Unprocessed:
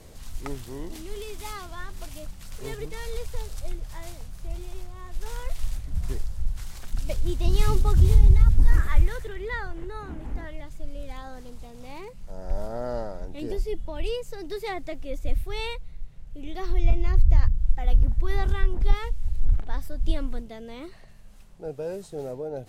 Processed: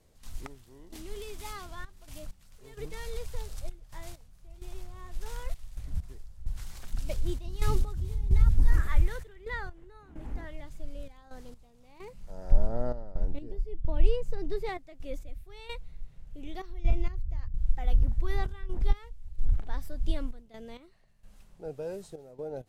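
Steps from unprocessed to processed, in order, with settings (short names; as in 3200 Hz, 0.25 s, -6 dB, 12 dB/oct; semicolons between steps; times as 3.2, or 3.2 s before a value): 12.52–14.69 tilt -2.5 dB/oct; step gate ".x..xxxx" 65 bpm -12 dB; gain -4.5 dB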